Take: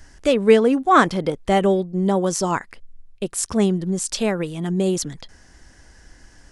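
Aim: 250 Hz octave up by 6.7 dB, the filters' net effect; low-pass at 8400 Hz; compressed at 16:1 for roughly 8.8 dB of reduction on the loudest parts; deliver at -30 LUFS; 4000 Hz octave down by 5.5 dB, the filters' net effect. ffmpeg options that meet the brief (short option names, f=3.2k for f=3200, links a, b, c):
-af "lowpass=8.4k,equalizer=f=250:t=o:g=9,equalizer=f=4k:t=o:g=-7.5,acompressor=threshold=-13dB:ratio=16,volume=-9.5dB"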